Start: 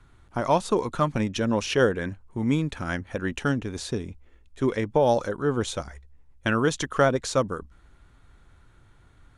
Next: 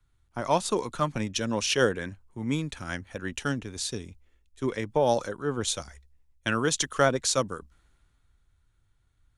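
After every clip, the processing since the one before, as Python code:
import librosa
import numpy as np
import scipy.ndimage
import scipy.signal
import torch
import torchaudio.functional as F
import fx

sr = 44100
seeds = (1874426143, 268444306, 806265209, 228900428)

y = fx.high_shelf(x, sr, hz=2600.0, db=10.0)
y = fx.band_widen(y, sr, depth_pct=40)
y = y * librosa.db_to_amplitude(-5.0)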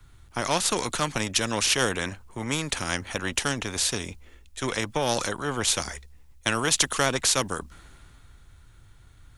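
y = fx.spectral_comp(x, sr, ratio=2.0)
y = y * librosa.db_to_amplitude(2.0)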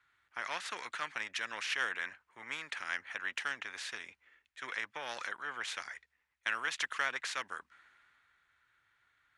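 y = fx.bandpass_q(x, sr, hz=1800.0, q=2.2)
y = y * librosa.db_to_amplitude(-3.5)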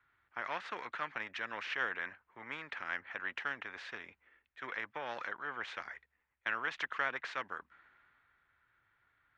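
y = fx.spacing_loss(x, sr, db_at_10k=34)
y = y * librosa.db_to_amplitude(4.5)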